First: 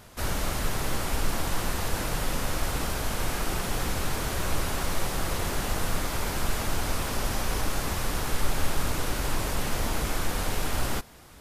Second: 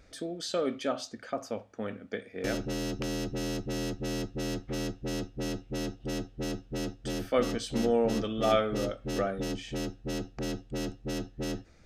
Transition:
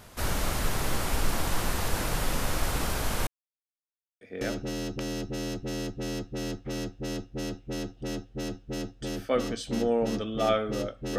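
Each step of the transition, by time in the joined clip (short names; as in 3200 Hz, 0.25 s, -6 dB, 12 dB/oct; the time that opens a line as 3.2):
first
3.27–4.21 mute
4.21 switch to second from 2.24 s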